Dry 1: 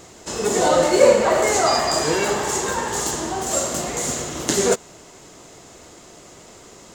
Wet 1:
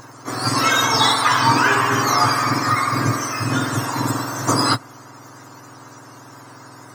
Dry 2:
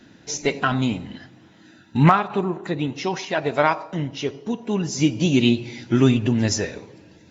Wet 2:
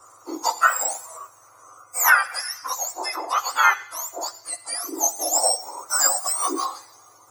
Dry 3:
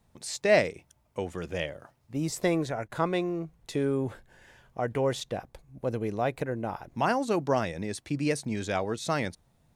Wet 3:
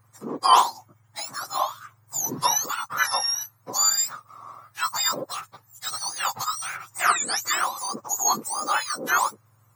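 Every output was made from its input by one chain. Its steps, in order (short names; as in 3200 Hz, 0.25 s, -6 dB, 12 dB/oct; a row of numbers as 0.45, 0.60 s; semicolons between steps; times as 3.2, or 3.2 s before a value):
spectrum mirrored in octaves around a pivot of 1400 Hz; EQ curve 120 Hz 0 dB, 190 Hz -20 dB, 450 Hz -12 dB, 1200 Hz +7 dB, 3000 Hz -15 dB, 7000 Hz 0 dB, 10000 Hz -7 dB; normalise peaks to -3 dBFS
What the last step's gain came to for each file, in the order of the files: +9.5, +6.0, +12.5 dB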